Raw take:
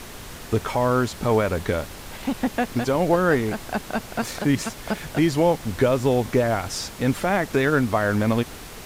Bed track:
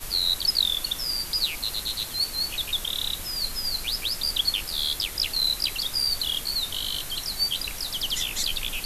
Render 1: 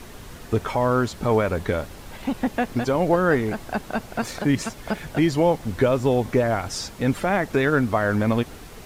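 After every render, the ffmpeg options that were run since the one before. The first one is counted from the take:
ffmpeg -i in.wav -af "afftdn=noise_reduction=6:noise_floor=-39" out.wav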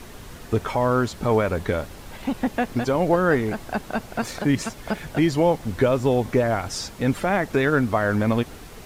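ffmpeg -i in.wav -af anull out.wav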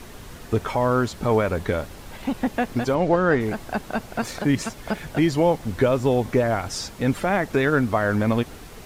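ffmpeg -i in.wav -filter_complex "[0:a]asplit=3[link_01][link_02][link_03];[link_01]afade=type=out:start_time=2.94:duration=0.02[link_04];[link_02]lowpass=6000,afade=type=in:start_time=2.94:duration=0.02,afade=type=out:start_time=3.39:duration=0.02[link_05];[link_03]afade=type=in:start_time=3.39:duration=0.02[link_06];[link_04][link_05][link_06]amix=inputs=3:normalize=0" out.wav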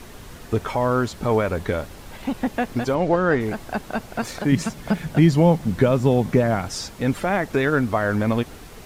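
ffmpeg -i in.wav -filter_complex "[0:a]asettb=1/sr,asplit=3[link_01][link_02][link_03];[link_01]atrim=end=4.524[link_04];[link_02]atrim=start=4.52:end=6.66,asetpts=PTS-STARTPTS,afade=type=in:duration=0.004:curve=qsin,afade=type=out:start_time=2.136:duration=0.004:curve=qsin,equalizer=frequency=170:width_type=o:width=0.77:gain=11[link_05];[link_03]atrim=start=6.656[link_06];[link_04][link_05]acrossfade=duration=0.004:curve1=hsin:curve2=qsin[link_07];[link_07][link_06]acrossfade=duration=0.004:curve1=qsin:curve2=hsin" out.wav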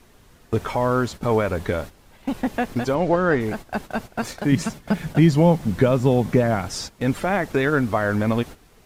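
ffmpeg -i in.wav -af "agate=range=-12dB:threshold=-32dB:ratio=16:detection=peak" out.wav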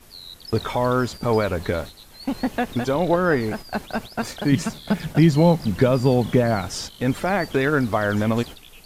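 ffmpeg -i in.wav -i bed.wav -filter_complex "[1:a]volume=-16.5dB[link_01];[0:a][link_01]amix=inputs=2:normalize=0" out.wav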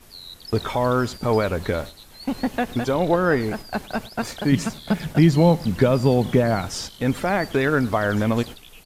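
ffmpeg -i in.wav -af "aecho=1:1:105:0.0668" out.wav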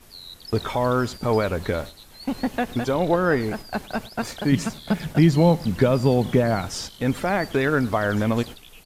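ffmpeg -i in.wav -af "volume=-1dB" out.wav

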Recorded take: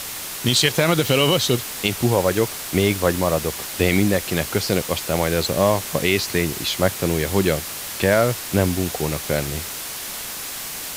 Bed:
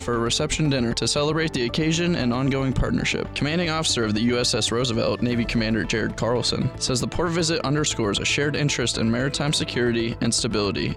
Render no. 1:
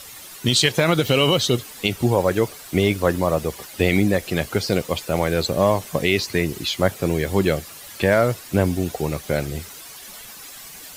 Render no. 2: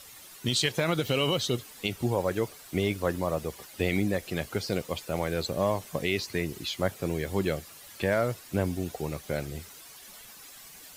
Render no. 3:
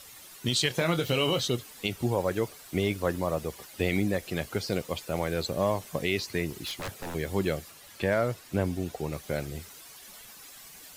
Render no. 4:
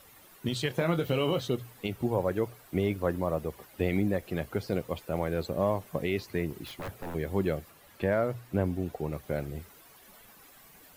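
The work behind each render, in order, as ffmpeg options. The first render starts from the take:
ffmpeg -i in.wav -af "afftdn=noise_reduction=12:noise_floor=-31" out.wav
ffmpeg -i in.wav -af "volume=-9dB" out.wav
ffmpeg -i in.wav -filter_complex "[0:a]asettb=1/sr,asplit=3[link_01][link_02][link_03];[link_01]atrim=end=0.684[link_04];[link_02]atrim=start=0.68:end=1.48,asetpts=PTS-STARTPTS,afade=type=in:duration=0.004:curve=qsin,afade=type=out:start_time=0.796:duration=0.004:curve=qsin,asplit=2[link_05][link_06];[link_06]adelay=24,volume=-9dB[link_07];[link_05][link_07]amix=inputs=2:normalize=0,atrim=end_sample=35280[link_08];[link_03]atrim=start=1.476[link_09];[link_04][link_08]acrossfade=duration=0.004:curve1=hsin:curve2=qsin[link_10];[link_10][link_09]acrossfade=duration=0.004:curve1=qsin:curve2=hsin,asettb=1/sr,asplit=3[link_11][link_12][link_13];[link_11]atrim=end=6.504[link_14];[link_12]atrim=start=6.5:end=7.15,asetpts=PTS-STARTPTS,afade=type=in:duration=0.004:curve=qsin,afade=type=out:start_time=0.646:duration=0.004:curve=qsin,aeval=exprs='0.0335*(abs(mod(val(0)/0.0335+3,4)-2)-1)':channel_layout=same[link_15];[link_13]atrim=start=7.146[link_16];[link_14][link_15]acrossfade=duration=0.004:curve1=hsin:curve2=qsin[link_17];[link_17][link_16]acrossfade=duration=0.004:curve1=qsin:curve2=hsin,asettb=1/sr,asplit=3[link_18][link_19][link_20];[link_18]atrim=end=7.714[link_21];[link_19]atrim=start=7.71:end=9.13,asetpts=PTS-STARTPTS,afade=type=in:duration=0.004:curve=qsin,afade=type=out:start_time=1.416:duration=0.004:curve=qsin,highshelf=frequency=6600:gain=-4.5[link_22];[link_20]atrim=start=9.126[link_23];[link_21][link_22]acrossfade=duration=0.004:curve1=hsin:curve2=qsin[link_24];[link_24][link_23]acrossfade=duration=0.004:curve1=qsin:curve2=hsin" out.wav
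ffmpeg -i in.wav -af "equalizer=frequency=6100:width=0.43:gain=-12.5,bandreject=frequency=60:width_type=h:width=6,bandreject=frequency=120:width_type=h:width=6" out.wav

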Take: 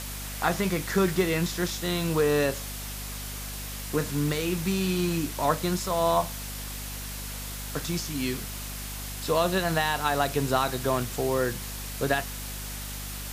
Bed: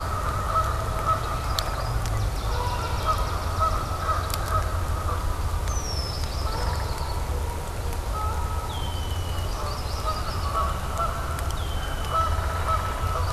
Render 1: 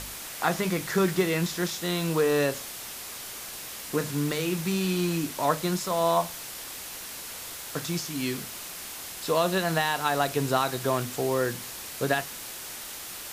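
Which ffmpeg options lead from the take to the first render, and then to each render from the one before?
ffmpeg -i in.wav -af "bandreject=frequency=50:width_type=h:width=4,bandreject=frequency=100:width_type=h:width=4,bandreject=frequency=150:width_type=h:width=4,bandreject=frequency=200:width_type=h:width=4,bandreject=frequency=250:width_type=h:width=4" out.wav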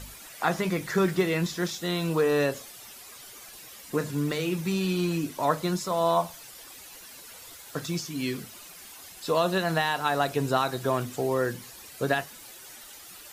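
ffmpeg -i in.wav -af "afftdn=noise_reduction=11:noise_floor=-40" out.wav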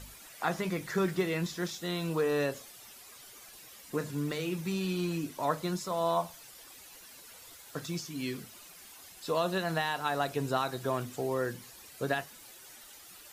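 ffmpeg -i in.wav -af "volume=-5.5dB" out.wav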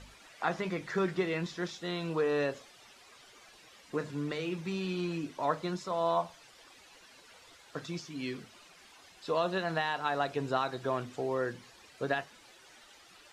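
ffmpeg -i in.wav -af "lowpass=6100,bass=frequency=250:gain=-4,treble=frequency=4000:gain=-4" out.wav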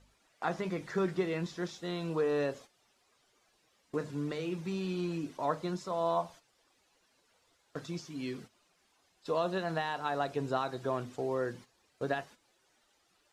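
ffmpeg -i in.wav -af "agate=range=-12dB:threshold=-48dB:ratio=16:detection=peak,equalizer=frequency=2400:width=0.57:gain=-5" out.wav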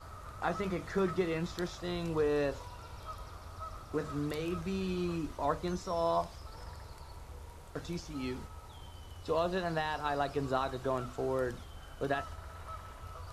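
ffmpeg -i in.wav -i bed.wav -filter_complex "[1:a]volume=-20.5dB[link_01];[0:a][link_01]amix=inputs=2:normalize=0" out.wav

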